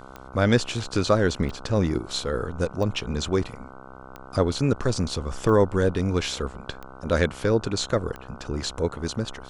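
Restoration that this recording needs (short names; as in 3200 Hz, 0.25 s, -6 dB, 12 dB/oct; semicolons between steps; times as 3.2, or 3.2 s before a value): de-click; de-hum 65.3 Hz, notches 23; expander -34 dBFS, range -21 dB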